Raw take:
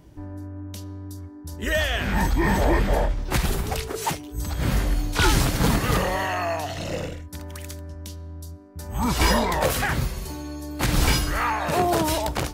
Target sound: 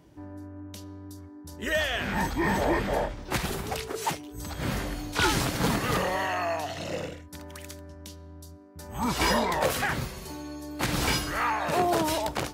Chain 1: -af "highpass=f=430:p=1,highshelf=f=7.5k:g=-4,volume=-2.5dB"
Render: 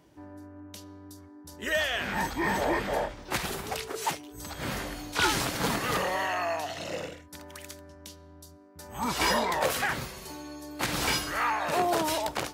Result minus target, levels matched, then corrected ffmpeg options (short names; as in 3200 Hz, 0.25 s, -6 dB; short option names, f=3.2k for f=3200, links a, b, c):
125 Hz band -5.5 dB
-af "highpass=f=170:p=1,highshelf=f=7.5k:g=-4,volume=-2.5dB"